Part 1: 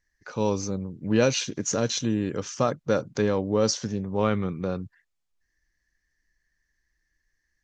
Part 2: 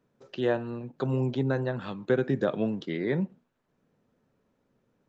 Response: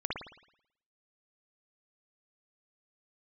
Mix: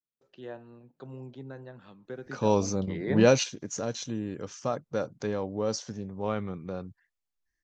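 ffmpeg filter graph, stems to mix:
-filter_complex "[0:a]adynamicequalizer=threshold=0.00891:dfrequency=3100:dqfactor=0.73:tfrequency=3100:tqfactor=0.73:attack=5:release=100:ratio=0.375:range=1.5:mode=cutabove:tftype=bell,adelay=2050,volume=0dB[link_01];[1:a]agate=range=-19dB:threshold=-60dB:ratio=16:detection=peak,volume=-3dB,afade=type=in:start_time=2.76:duration=0.36:silence=0.237137,asplit=2[link_02][link_03];[link_03]apad=whole_len=427200[link_04];[link_01][link_04]sidechaingate=range=-8dB:threshold=-54dB:ratio=16:detection=peak[link_05];[link_05][link_02]amix=inputs=2:normalize=0,adynamicequalizer=threshold=0.00631:dfrequency=730:dqfactor=2:tfrequency=730:tqfactor=2:attack=5:release=100:ratio=0.375:range=2.5:mode=boostabove:tftype=bell"

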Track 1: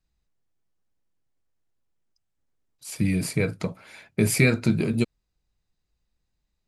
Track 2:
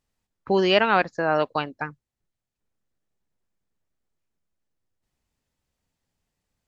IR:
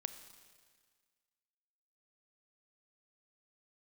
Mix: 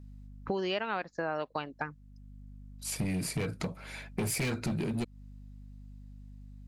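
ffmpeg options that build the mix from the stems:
-filter_complex "[0:a]asoftclip=type=hard:threshold=-21.5dB,aeval=exprs='val(0)+0.00355*(sin(2*PI*50*n/s)+sin(2*PI*2*50*n/s)/2+sin(2*PI*3*50*n/s)/3+sin(2*PI*4*50*n/s)/4+sin(2*PI*5*50*n/s)/5)':channel_layout=same,volume=2dB[link_01];[1:a]volume=0dB,asplit=2[link_02][link_03];[link_03]apad=whole_len=294358[link_04];[link_01][link_04]sidechaincompress=threshold=-29dB:ratio=8:attack=9:release=719[link_05];[link_05][link_02]amix=inputs=2:normalize=0,acompressor=threshold=-31dB:ratio=5"

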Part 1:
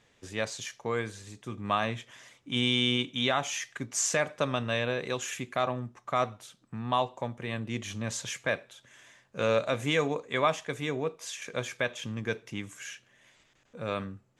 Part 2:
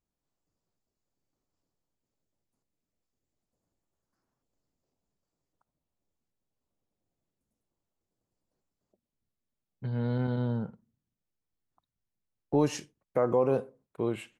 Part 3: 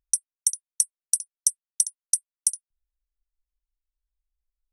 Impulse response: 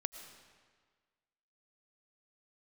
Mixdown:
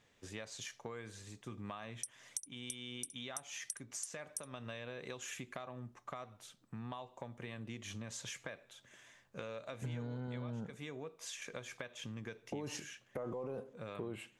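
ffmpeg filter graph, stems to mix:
-filter_complex "[0:a]acompressor=threshold=-33dB:ratio=6,volume=-5.5dB,asplit=2[link_01][link_02];[1:a]alimiter=level_in=1dB:limit=-24dB:level=0:latency=1:release=14,volume=-1dB,volume=2.5dB[link_03];[2:a]adelay=1900,volume=-6dB[link_04];[link_02]apad=whole_len=292337[link_05];[link_04][link_05]sidechaincompress=threshold=-46dB:ratio=5:attack=22:release=647[link_06];[link_01][link_03][link_06]amix=inputs=3:normalize=0,acompressor=threshold=-41dB:ratio=4"

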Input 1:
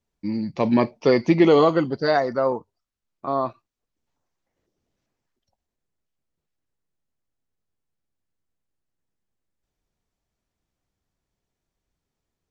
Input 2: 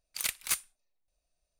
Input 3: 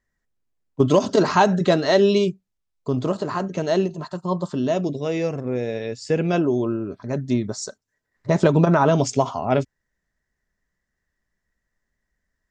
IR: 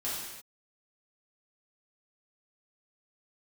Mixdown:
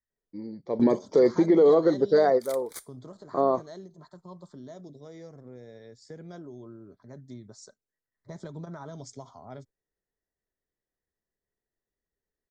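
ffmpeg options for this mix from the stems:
-filter_complex "[0:a]adelay=100,volume=-5.5dB[link_01];[1:a]adelay=2250,volume=-12dB[link_02];[2:a]acrossover=split=130|3000[link_03][link_04][link_05];[link_04]acompressor=threshold=-27dB:ratio=2[link_06];[link_03][link_06][link_05]amix=inputs=3:normalize=0,volume=-18dB,asplit=2[link_07][link_08];[link_08]apad=whole_len=560335[link_09];[link_01][link_09]sidechaingate=range=-12dB:threshold=-53dB:ratio=16:detection=peak[link_10];[link_10][link_02]amix=inputs=2:normalize=0,equalizer=frequency=440:width=1.2:gain=14.5,alimiter=limit=-12dB:level=0:latency=1:release=196,volume=0dB[link_11];[link_07][link_11]amix=inputs=2:normalize=0,asuperstop=centerf=2700:order=4:qfactor=2.5"

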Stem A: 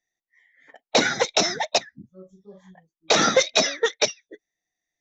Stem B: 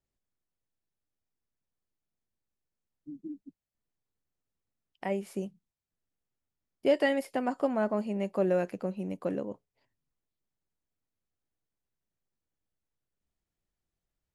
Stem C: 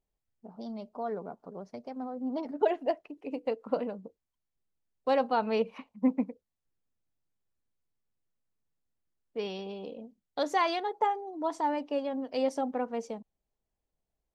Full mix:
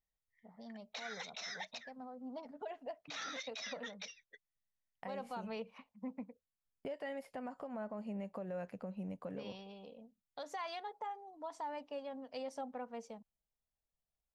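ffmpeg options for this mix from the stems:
ffmpeg -i stem1.wav -i stem2.wav -i stem3.wav -filter_complex "[0:a]bandpass=frequency=2400:width_type=q:width=0.79:csg=0,volume=1dB[link_01];[1:a]highshelf=frequency=2800:gain=-10.5,volume=-3dB[link_02];[2:a]volume=-8.5dB,asplit=2[link_03][link_04];[link_04]apad=whole_len=220929[link_05];[link_01][link_05]sidechaincompress=threshold=-50dB:ratio=16:attack=27:release=662[link_06];[link_06][link_02]amix=inputs=2:normalize=0,agate=range=-20dB:threshold=-55dB:ratio=16:detection=peak,acompressor=threshold=-33dB:ratio=3,volume=0dB[link_07];[link_03][link_07]amix=inputs=2:normalize=0,equalizer=frequency=340:width=2.6:gain=-13.5,alimiter=level_in=10.5dB:limit=-24dB:level=0:latency=1:release=119,volume=-10.5dB" out.wav

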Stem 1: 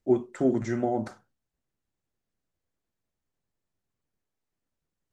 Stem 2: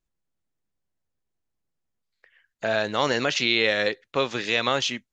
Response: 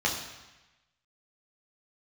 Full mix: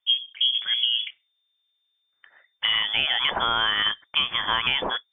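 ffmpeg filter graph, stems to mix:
-filter_complex "[0:a]afwtdn=0.00891,highpass=280,volume=3dB[link_01];[1:a]volume=-0.5dB[link_02];[link_01][link_02]amix=inputs=2:normalize=0,acontrast=32,lowpass=frequency=3100:width_type=q:width=0.5098,lowpass=frequency=3100:width_type=q:width=0.6013,lowpass=frequency=3100:width_type=q:width=0.9,lowpass=frequency=3100:width_type=q:width=2.563,afreqshift=-3600,acompressor=threshold=-19dB:ratio=6"

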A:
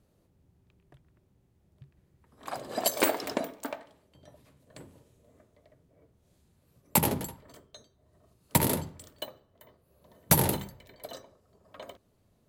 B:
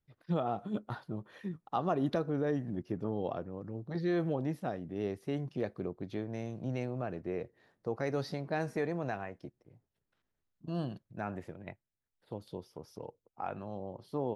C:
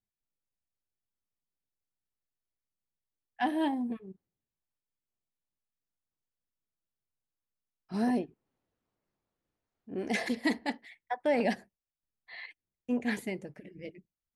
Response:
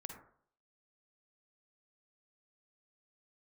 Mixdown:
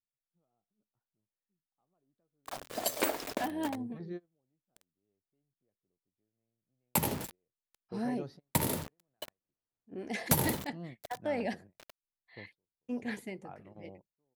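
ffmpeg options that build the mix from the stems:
-filter_complex "[0:a]acrusher=bits=5:mix=0:aa=0.000001,volume=-5.5dB[link_01];[1:a]tiltshelf=frequency=880:gain=3.5,adelay=50,volume=-11.5dB[link_02];[2:a]volume=-6dB,asplit=2[link_03][link_04];[link_04]apad=whole_len=635190[link_05];[link_02][link_05]sidechaingate=range=-33dB:threshold=-56dB:ratio=16:detection=peak[link_06];[link_01][link_06][link_03]amix=inputs=3:normalize=0,agate=range=-6dB:threshold=-50dB:ratio=16:detection=peak"

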